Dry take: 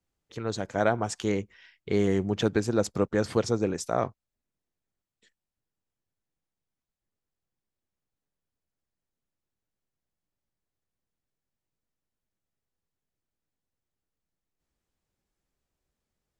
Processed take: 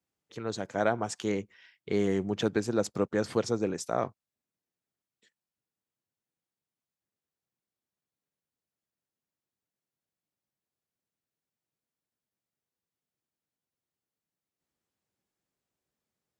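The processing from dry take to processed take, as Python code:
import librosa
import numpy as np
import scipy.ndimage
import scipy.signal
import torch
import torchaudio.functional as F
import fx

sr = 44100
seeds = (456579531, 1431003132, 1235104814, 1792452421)

y = scipy.signal.sosfilt(scipy.signal.butter(2, 120.0, 'highpass', fs=sr, output='sos'), x)
y = y * 10.0 ** (-2.5 / 20.0)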